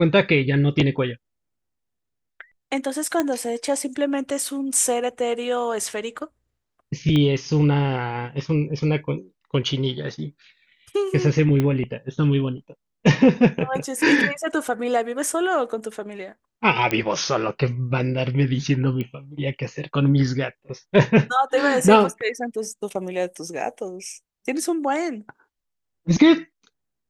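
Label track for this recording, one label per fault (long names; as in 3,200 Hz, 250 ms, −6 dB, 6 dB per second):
3.200000	3.200000	click −8 dBFS
7.160000	7.160000	click −12 dBFS
11.600000	11.600000	click −10 dBFS
16.910000	16.910000	click −8 dBFS
19.010000	19.010000	click −17 dBFS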